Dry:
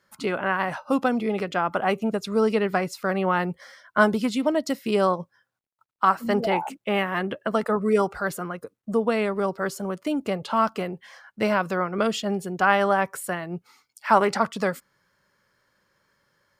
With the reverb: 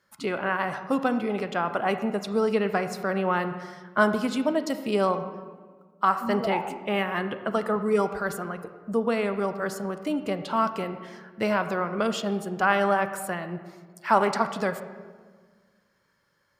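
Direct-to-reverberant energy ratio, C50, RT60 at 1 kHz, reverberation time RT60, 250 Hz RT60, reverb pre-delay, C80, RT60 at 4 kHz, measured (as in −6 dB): 9.5 dB, 10.5 dB, 1.5 s, 1.6 s, 2.0 s, 29 ms, 11.5 dB, 1.0 s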